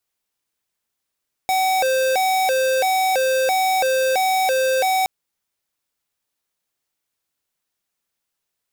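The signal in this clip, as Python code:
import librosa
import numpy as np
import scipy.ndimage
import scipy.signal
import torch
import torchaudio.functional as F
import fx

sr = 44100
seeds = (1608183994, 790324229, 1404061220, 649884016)

y = fx.siren(sr, length_s=3.57, kind='hi-lo', low_hz=523.0, high_hz=756.0, per_s=1.5, wave='square', level_db=-18.5)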